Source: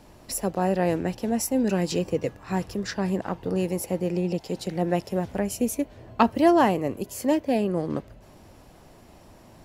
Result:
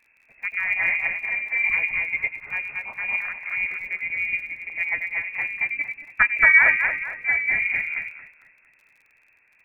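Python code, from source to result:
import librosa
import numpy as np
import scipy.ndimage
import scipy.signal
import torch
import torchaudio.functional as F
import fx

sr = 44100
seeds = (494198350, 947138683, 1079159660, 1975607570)

y = fx.echo_split(x, sr, split_hz=580.0, low_ms=95, high_ms=228, feedback_pct=52, wet_db=-3.0)
y = fx.freq_invert(y, sr, carrier_hz=2600)
y = fx.dmg_crackle(y, sr, seeds[0], per_s=31.0, level_db=-36.0)
y = fx.upward_expand(y, sr, threshold_db=-43.0, expansion=1.5)
y = F.gain(torch.from_numpy(y), 2.5).numpy()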